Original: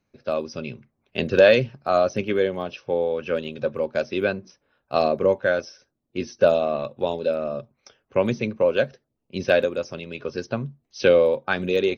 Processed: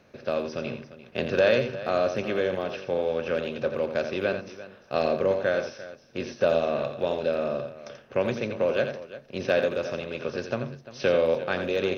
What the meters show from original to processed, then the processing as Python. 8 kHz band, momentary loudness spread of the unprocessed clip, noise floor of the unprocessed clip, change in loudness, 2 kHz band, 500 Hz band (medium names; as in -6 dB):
no reading, 15 LU, -77 dBFS, -4.5 dB, -4.0 dB, -4.0 dB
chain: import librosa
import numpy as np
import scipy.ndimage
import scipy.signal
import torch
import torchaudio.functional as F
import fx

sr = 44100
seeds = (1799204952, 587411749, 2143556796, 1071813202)

y = fx.bin_compress(x, sr, power=0.6)
y = fx.echo_multitap(y, sr, ms=(85, 347), db=(-8.5, -15.5))
y = y * librosa.db_to_amplitude(-8.5)